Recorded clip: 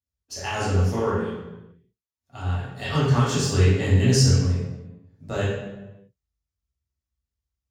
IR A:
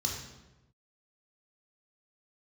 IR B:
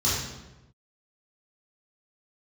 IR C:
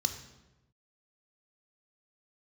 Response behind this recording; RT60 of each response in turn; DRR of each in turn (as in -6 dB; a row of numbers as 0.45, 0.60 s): B; 1.0, 1.0, 1.0 s; -1.5, -10.0, 6.0 dB